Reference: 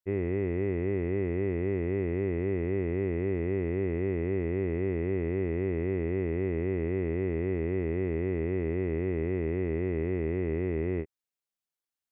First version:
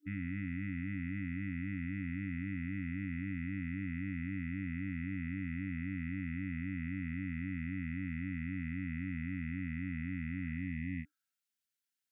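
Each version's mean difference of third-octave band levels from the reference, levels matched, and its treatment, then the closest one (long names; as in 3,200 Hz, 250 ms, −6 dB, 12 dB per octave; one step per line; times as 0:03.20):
10.0 dB: brick-wall band-stop 300–1,300 Hz
high-pass filter 200 Hz 6 dB per octave
healed spectral selection 0:10.48–0:11.44, 550–1,700 Hz both
brickwall limiter −30.5 dBFS, peak gain reduction 4 dB
level +2 dB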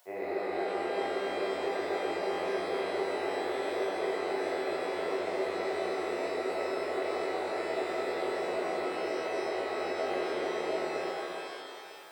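15.0 dB: upward compression, threshold −40 dBFS
high-pass with resonance 660 Hz, resonance Q 4.9
reverb with rising layers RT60 3 s, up +12 semitones, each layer −8 dB, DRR −7 dB
level −6 dB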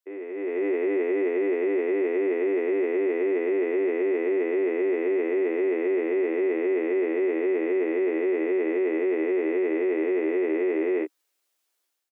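7.0 dB: double-tracking delay 16 ms −5 dB
brickwall limiter −29.5 dBFS, peak gain reduction 10 dB
Chebyshev high-pass filter 300 Hz, order 5
automatic gain control gain up to 12.5 dB
level +2.5 dB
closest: third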